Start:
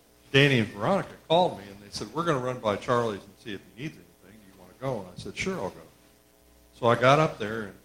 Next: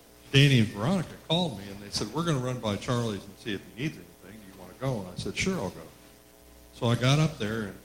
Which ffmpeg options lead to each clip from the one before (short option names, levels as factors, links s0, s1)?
-filter_complex "[0:a]acrossover=split=270|3000[s0][s1][s2];[s1]acompressor=threshold=0.0141:ratio=6[s3];[s0][s3][s2]amix=inputs=3:normalize=0,volume=1.78"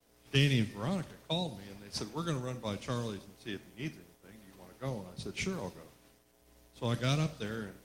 -af "agate=range=0.0224:threshold=0.00355:ratio=3:detection=peak,volume=0.422"